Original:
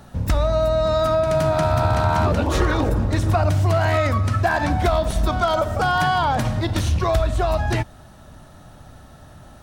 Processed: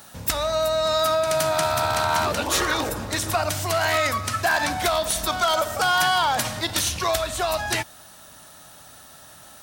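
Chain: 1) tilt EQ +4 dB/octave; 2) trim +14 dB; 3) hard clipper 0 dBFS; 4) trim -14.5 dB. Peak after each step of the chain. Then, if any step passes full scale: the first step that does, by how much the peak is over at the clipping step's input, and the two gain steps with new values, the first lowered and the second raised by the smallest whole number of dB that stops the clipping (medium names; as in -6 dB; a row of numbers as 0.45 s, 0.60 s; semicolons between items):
-6.5 dBFS, +7.5 dBFS, 0.0 dBFS, -14.5 dBFS; step 2, 7.5 dB; step 2 +6 dB, step 4 -6.5 dB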